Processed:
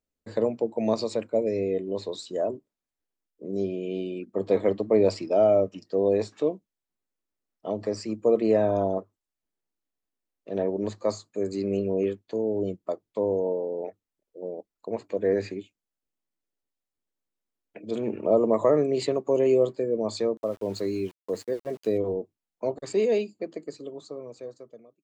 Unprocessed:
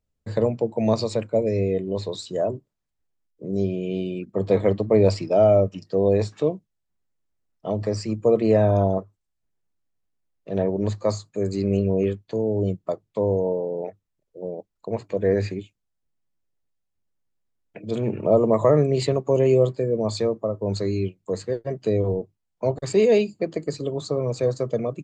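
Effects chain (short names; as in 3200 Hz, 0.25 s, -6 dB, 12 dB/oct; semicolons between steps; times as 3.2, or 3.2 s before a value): ending faded out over 2.80 s; resonant low shelf 190 Hz -8.5 dB, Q 1.5; 20.37–21.98 sample gate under -42.5 dBFS; gain -4 dB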